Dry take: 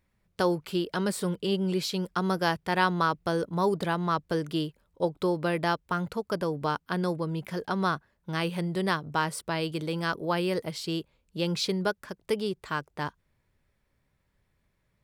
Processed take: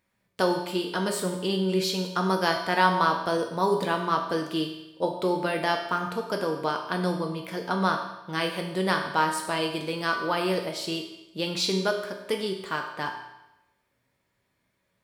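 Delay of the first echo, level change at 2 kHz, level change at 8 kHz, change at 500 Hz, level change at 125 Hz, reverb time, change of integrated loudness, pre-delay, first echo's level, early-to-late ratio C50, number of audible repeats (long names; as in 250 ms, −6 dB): no echo audible, +3.5 dB, +4.0 dB, +2.5 dB, −2.0 dB, 0.95 s, +2.5 dB, 3 ms, no echo audible, 6.0 dB, no echo audible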